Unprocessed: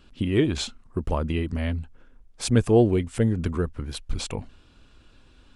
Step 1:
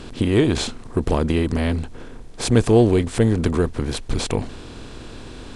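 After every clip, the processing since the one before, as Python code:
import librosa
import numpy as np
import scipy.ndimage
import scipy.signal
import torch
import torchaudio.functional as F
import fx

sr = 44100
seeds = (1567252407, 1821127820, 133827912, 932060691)

y = fx.bin_compress(x, sr, power=0.6)
y = F.gain(torch.from_numpy(y), 2.0).numpy()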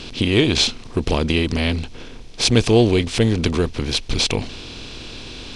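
y = fx.band_shelf(x, sr, hz=3700.0, db=10.5, octaves=1.7)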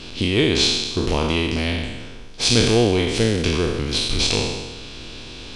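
y = fx.spec_trails(x, sr, decay_s=1.26)
y = F.gain(torch.from_numpy(y), -4.0).numpy()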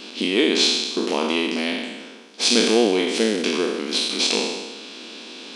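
y = fx.brickwall_highpass(x, sr, low_hz=190.0)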